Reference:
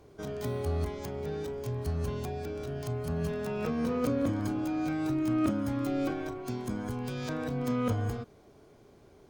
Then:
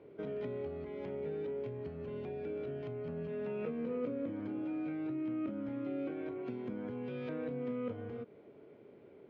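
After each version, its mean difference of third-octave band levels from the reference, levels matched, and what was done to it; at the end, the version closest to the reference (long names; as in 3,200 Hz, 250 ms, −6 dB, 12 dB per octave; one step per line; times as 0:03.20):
7.0 dB: downward compressor 4 to 1, threshold −37 dBFS, peak gain reduction 11.5 dB
loudspeaker in its box 190–2,600 Hz, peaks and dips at 490 Hz +4 dB, 750 Hz −8 dB, 1,100 Hz −9 dB, 1,600 Hz −6 dB
level +1.5 dB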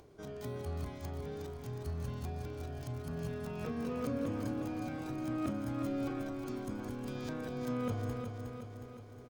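4.0 dB: upward compression, threshold −46 dBFS
repeating echo 363 ms, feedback 57%, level −6 dB
level −7.5 dB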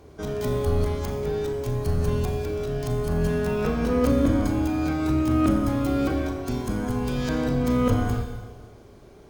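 3.0 dB: sub-octave generator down 2 octaves, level −4 dB
four-comb reverb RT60 1.4 s, combs from 28 ms, DRR 4 dB
level +6 dB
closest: third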